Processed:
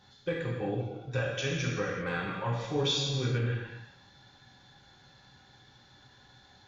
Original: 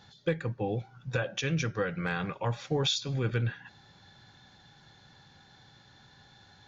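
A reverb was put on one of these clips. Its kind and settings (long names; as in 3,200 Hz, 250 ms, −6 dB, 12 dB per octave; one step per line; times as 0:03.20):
reverb whose tail is shaped and stops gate 420 ms falling, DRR −4 dB
level −5.5 dB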